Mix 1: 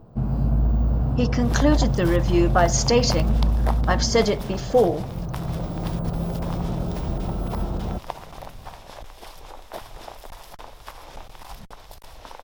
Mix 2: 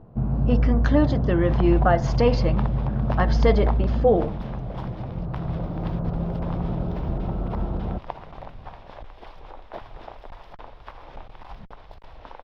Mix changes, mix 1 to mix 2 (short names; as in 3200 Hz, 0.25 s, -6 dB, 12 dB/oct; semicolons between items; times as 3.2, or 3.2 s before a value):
speech: entry -0.70 s; master: add air absorption 330 m